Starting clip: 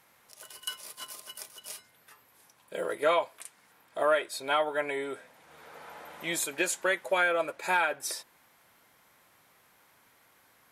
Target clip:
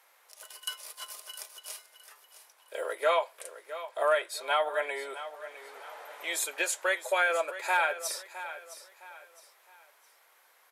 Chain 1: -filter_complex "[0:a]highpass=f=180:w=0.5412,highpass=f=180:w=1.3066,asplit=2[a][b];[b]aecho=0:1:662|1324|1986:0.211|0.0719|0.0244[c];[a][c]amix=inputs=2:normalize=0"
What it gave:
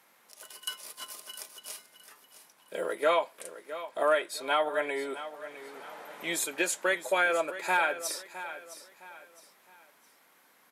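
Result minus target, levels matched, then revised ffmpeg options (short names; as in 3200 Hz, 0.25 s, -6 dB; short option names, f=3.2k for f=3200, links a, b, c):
250 Hz band +10.5 dB
-filter_complex "[0:a]highpass=f=460:w=0.5412,highpass=f=460:w=1.3066,asplit=2[a][b];[b]aecho=0:1:662|1324|1986:0.211|0.0719|0.0244[c];[a][c]amix=inputs=2:normalize=0"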